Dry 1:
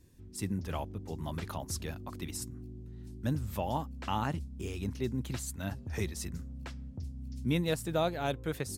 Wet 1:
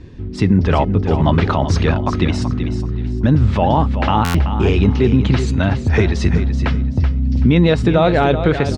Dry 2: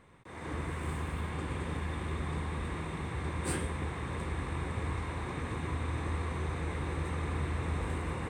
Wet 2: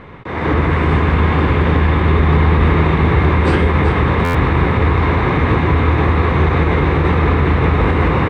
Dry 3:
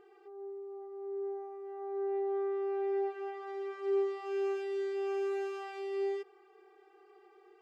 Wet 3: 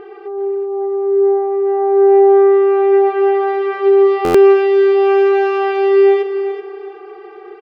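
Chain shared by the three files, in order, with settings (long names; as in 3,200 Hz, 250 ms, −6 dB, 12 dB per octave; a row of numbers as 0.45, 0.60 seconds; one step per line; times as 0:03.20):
Bessel low-pass filter 2,900 Hz, order 4
brickwall limiter −28.5 dBFS
tuned comb filter 420 Hz, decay 0.32 s, harmonics odd, mix 60%
repeating echo 380 ms, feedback 29%, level −10 dB
buffer that repeats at 0:04.24, samples 512, times 8
normalise the peak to −2 dBFS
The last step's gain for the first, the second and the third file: +32.0, +31.5, +32.0 decibels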